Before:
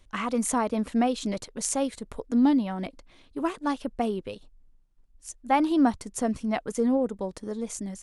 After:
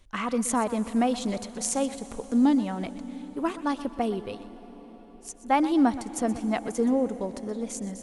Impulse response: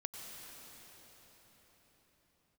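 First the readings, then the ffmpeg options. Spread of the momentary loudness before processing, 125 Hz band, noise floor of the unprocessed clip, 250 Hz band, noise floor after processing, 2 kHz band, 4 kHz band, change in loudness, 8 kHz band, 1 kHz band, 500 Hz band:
16 LU, 0.0 dB, −59 dBFS, +0.5 dB, −49 dBFS, 0.0 dB, 0.0 dB, 0.0 dB, 0.0 dB, +0.5 dB, 0.0 dB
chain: -filter_complex "[0:a]asplit=2[link_01][link_02];[1:a]atrim=start_sample=2205,adelay=124[link_03];[link_02][link_03]afir=irnorm=-1:irlink=0,volume=-11.5dB[link_04];[link_01][link_04]amix=inputs=2:normalize=0"

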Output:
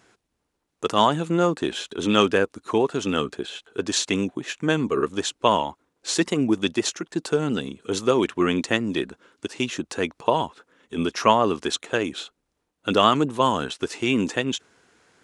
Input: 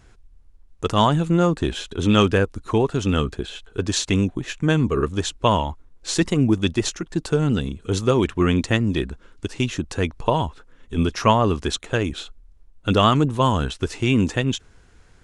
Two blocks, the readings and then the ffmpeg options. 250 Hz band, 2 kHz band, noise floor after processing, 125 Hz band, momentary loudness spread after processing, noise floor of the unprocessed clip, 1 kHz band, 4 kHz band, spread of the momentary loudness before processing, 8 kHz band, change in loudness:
−3.0 dB, 0.0 dB, −77 dBFS, −11.0 dB, 11 LU, −52 dBFS, 0.0 dB, 0.0 dB, 11 LU, 0.0 dB, −2.0 dB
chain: -af "highpass=250"

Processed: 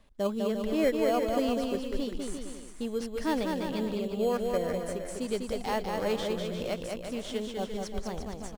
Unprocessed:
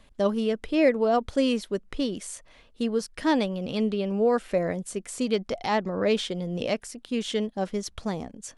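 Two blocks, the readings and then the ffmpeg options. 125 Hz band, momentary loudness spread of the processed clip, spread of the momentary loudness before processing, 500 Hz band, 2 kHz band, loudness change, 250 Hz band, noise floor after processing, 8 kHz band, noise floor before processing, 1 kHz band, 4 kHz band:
−5.5 dB, 9 LU, 9 LU, −4.0 dB, −5.5 dB, −4.5 dB, −5.0 dB, −43 dBFS, −5.0 dB, −56 dBFS, −4.0 dB, −5.5 dB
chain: -filter_complex "[0:a]asubboost=boost=5.5:cutoff=66,asplit=2[link_01][link_02];[link_02]acrusher=samples=12:mix=1:aa=0.000001,volume=-7dB[link_03];[link_01][link_03]amix=inputs=2:normalize=0,aecho=1:1:200|350|462.5|546.9|610.2:0.631|0.398|0.251|0.158|0.1,volume=-8.5dB"

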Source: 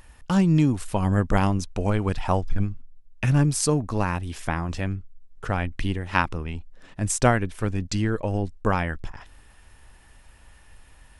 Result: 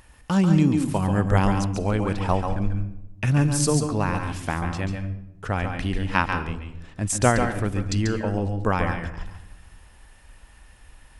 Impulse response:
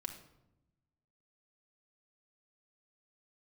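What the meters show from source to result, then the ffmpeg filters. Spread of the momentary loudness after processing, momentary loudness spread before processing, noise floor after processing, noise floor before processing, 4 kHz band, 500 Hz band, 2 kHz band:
12 LU, 10 LU, −51 dBFS, −52 dBFS, +1.0 dB, +1.0 dB, +1.0 dB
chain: -filter_complex "[0:a]highpass=frequency=42:poles=1,asplit=2[link_01][link_02];[link_02]asubboost=boost=3:cutoff=70[link_03];[1:a]atrim=start_sample=2205,adelay=139[link_04];[link_03][link_04]afir=irnorm=-1:irlink=0,volume=-3dB[link_05];[link_01][link_05]amix=inputs=2:normalize=0"

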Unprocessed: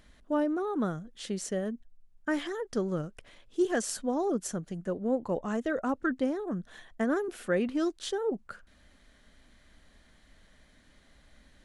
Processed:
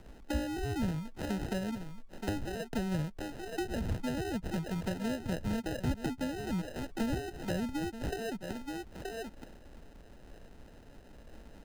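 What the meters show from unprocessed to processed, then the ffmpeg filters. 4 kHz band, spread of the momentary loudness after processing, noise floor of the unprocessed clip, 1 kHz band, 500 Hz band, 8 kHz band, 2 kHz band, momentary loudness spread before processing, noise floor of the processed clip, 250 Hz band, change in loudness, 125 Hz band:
−0.5 dB, 21 LU, −62 dBFS, −4.5 dB, −7.5 dB, −8.0 dB, −4.0 dB, 10 LU, −54 dBFS, −3.5 dB, −4.5 dB, +5.0 dB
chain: -filter_complex "[0:a]aecho=1:1:926:0.211,acrusher=samples=39:mix=1:aa=0.000001,highshelf=frequency=10000:gain=-5,acrossover=split=160[link_01][link_02];[link_02]acompressor=threshold=-43dB:ratio=6[link_03];[link_01][link_03]amix=inputs=2:normalize=0,volume=7dB"

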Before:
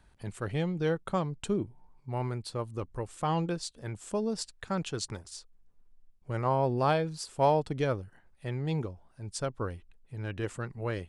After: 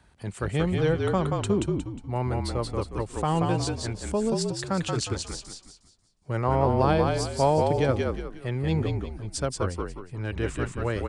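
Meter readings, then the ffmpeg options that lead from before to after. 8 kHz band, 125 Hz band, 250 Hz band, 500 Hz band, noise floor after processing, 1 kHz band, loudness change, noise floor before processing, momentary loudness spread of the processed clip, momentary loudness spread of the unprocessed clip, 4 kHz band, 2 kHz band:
+6.5 dB, +7.0 dB, +6.5 dB, +5.5 dB, −59 dBFS, +4.0 dB, +5.5 dB, −63 dBFS, 11 LU, 15 LU, +6.0 dB, +5.5 dB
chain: -filter_complex "[0:a]highpass=54,acrossover=split=460[link_01][link_02];[link_02]acompressor=threshold=-33dB:ratio=1.5[link_03];[link_01][link_03]amix=inputs=2:normalize=0,asplit=2[link_04][link_05];[link_05]asplit=5[link_06][link_07][link_08][link_09][link_10];[link_06]adelay=180,afreqshift=-43,volume=-3dB[link_11];[link_07]adelay=360,afreqshift=-86,volume=-11.9dB[link_12];[link_08]adelay=540,afreqshift=-129,volume=-20.7dB[link_13];[link_09]adelay=720,afreqshift=-172,volume=-29.6dB[link_14];[link_10]adelay=900,afreqshift=-215,volume=-38.5dB[link_15];[link_11][link_12][link_13][link_14][link_15]amix=inputs=5:normalize=0[link_16];[link_04][link_16]amix=inputs=2:normalize=0,aresample=22050,aresample=44100,volume=5dB"

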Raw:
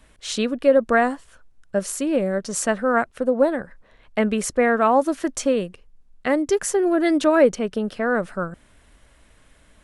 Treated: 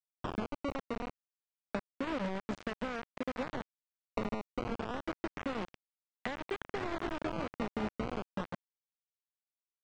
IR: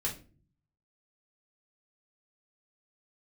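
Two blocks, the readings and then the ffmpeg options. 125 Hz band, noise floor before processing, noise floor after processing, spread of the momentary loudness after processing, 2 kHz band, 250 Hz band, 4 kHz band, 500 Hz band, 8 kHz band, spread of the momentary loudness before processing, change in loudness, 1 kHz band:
−8.5 dB, −56 dBFS, below −85 dBFS, 5 LU, −16.5 dB, −16.5 dB, −13.5 dB, −20.5 dB, −31.5 dB, 12 LU, −18.0 dB, −16.0 dB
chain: -filter_complex "[0:a]agate=range=-21dB:threshold=-41dB:ratio=16:detection=peak,bandreject=frequency=5700:width=7.2,acrossover=split=86|720|1700|5200[link_01][link_02][link_03][link_04][link_05];[link_01]acompressor=threshold=-56dB:ratio=4[link_06];[link_02]acompressor=threshold=-30dB:ratio=4[link_07];[link_03]acompressor=threshold=-33dB:ratio=4[link_08];[link_04]acompressor=threshold=-34dB:ratio=4[link_09];[link_05]acompressor=threshold=-44dB:ratio=4[link_10];[link_06][link_07][link_08][link_09][link_10]amix=inputs=5:normalize=0,acrossover=split=160[link_11][link_12];[link_11]alimiter=level_in=17dB:limit=-24dB:level=0:latency=1:release=448,volume=-17dB[link_13];[link_13][link_12]amix=inputs=2:normalize=0,equalizer=frequency=190:width_type=o:width=0.67:gain=11.5,asplit=2[link_14][link_15];[1:a]atrim=start_sample=2205,adelay=77[link_16];[link_15][link_16]afir=irnorm=-1:irlink=0,volume=-23.5dB[link_17];[link_14][link_17]amix=inputs=2:normalize=0,acompressor=threshold=-37dB:ratio=8,acrusher=samples=15:mix=1:aa=0.000001:lfo=1:lforange=24:lforate=0.29,aecho=1:1:499:0.251,acrusher=bits=5:mix=0:aa=0.000001,lowpass=frequency=7400:width=0.5412,lowpass=frequency=7400:width=1.3066,bass=frequency=250:gain=2,treble=frequency=4000:gain=-15,volume=1dB"

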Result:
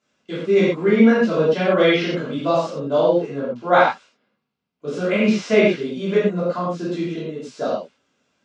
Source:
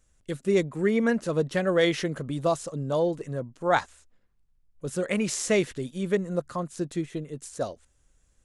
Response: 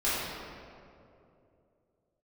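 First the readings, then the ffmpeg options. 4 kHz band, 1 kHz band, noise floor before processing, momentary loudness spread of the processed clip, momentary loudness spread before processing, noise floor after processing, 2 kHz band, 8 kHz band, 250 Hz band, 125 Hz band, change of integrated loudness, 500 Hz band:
+7.0 dB, +9.5 dB, −67 dBFS, 13 LU, 11 LU, −77 dBFS, +8.0 dB, can't be measured, +8.5 dB, +4.5 dB, +8.5 dB, +8.5 dB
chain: -filter_complex "[0:a]highpass=frequency=170:width=0.5412,highpass=frequency=170:width=1.3066,equalizer=frequency=190:width_type=q:width=4:gain=6,equalizer=frequency=340:width_type=q:width=4:gain=-5,equalizer=frequency=2800:width_type=q:width=4:gain=3,lowpass=frequency=5300:width=0.5412,lowpass=frequency=5300:width=1.3066,bandreject=frequency=1800:width=11[link_01];[1:a]atrim=start_sample=2205,atrim=end_sample=6174[link_02];[link_01][link_02]afir=irnorm=-1:irlink=0,acrossover=split=3300[link_03][link_04];[link_04]acompressor=threshold=-36dB:ratio=4:attack=1:release=60[link_05];[link_03][link_05]amix=inputs=2:normalize=0"

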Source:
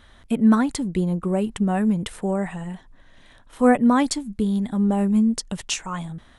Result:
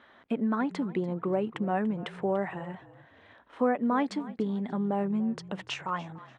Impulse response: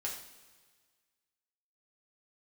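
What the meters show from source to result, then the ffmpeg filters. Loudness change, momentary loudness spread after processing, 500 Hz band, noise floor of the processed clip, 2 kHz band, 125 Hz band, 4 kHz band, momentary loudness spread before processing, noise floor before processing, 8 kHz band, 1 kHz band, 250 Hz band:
−9.0 dB, 8 LU, −5.0 dB, −58 dBFS, −6.5 dB, −10.0 dB, −10.0 dB, 12 LU, −52 dBFS, below −20 dB, −5.5 dB, −10.0 dB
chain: -filter_complex "[0:a]acompressor=threshold=-20dB:ratio=6,highpass=290,lowpass=2200,asplit=2[link_01][link_02];[link_02]asplit=3[link_03][link_04][link_05];[link_03]adelay=291,afreqshift=-38,volume=-18dB[link_06];[link_04]adelay=582,afreqshift=-76,volume=-28.5dB[link_07];[link_05]adelay=873,afreqshift=-114,volume=-38.9dB[link_08];[link_06][link_07][link_08]amix=inputs=3:normalize=0[link_09];[link_01][link_09]amix=inputs=2:normalize=0"

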